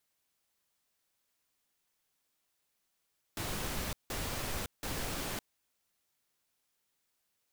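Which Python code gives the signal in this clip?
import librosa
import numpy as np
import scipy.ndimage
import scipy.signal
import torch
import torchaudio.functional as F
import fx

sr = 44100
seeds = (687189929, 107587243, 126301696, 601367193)

y = fx.noise_burst(sr, seeds[0], colour='pink', on_s=0.56, off_s=0.17, bursts=3, level_db=-37.0)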